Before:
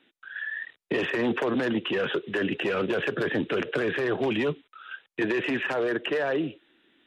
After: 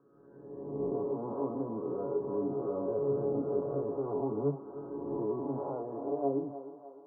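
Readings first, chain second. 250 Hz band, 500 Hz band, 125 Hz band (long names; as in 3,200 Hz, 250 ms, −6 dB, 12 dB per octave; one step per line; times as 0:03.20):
−7.0 dB, −4.5 dB, −3.5 dB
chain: peak hold with a rise ahead of every peak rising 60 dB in 1.49 s
Butterworth low-pass 1,100 Hz 72 dB per octave
speech leveller within 4 dB 0.5 s
flanger 0.38 Hz, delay 8.9 ms, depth 1.4 ms, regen −55%
tuned comb filter 140 Hz, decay 0.21 s, harmonics all, mix 90%
feedback echo with a high-pass in the loop 303 ms, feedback 68%, high-pass 490 Hz, level −9.5 dB
level +4 dB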